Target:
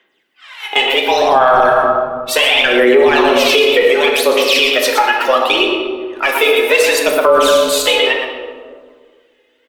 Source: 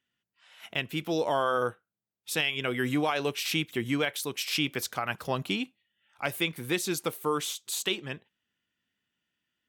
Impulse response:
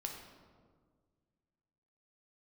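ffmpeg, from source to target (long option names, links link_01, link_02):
-filter_complex "[0:a]bass=frequency=250:gain=-11,treble=frequency=4000:gain=-10,aecho=1:1:119:0.376,afreqshift=120,asettb=1/sr,asplit=3[link_01][link_02][link_03];[link_01]atrim=end=3.824[link_04];[link_02]atrim=start=3.82:end=6.43,asetpts=PTS-STARTPTS,afade=type=in:duration=0.004:curve=qsin,afade=type=out:start_time=2.606:duration=0.004:curve=qsin,acrossover=split=390|3000[link_05][link_06][link_07];[link_06]acompressor=threshold=-34dB:ratio=6[link_08];[link_05][link_08][link_07]amix=inputs=3:normalize=0[link_09];[link_03]atrim=start=6.426[link_10];[link_04][link_09]acrossfade=duration=0.004:curve1=hsin:curve2=qsin[link_11];[link_11][link_10]acrossfade=duration=0.004:curve1=qsin:curve2=hsin,asoftclip=type=tanh:threshold=-17.5dB,aphaser=in_gain=1:out_gain=1:delay=2.4:decay=0.72:speed=0.69:type=sinusoidal[link_12];[1:a]atrim=start_sample=2205[link_13];[link_12][link_13]afir=irnorm=-1:irlink=0,alimiter=level_in=23dB:limit=-1dB:release=50:level=0:latency=1,volume=-1dB"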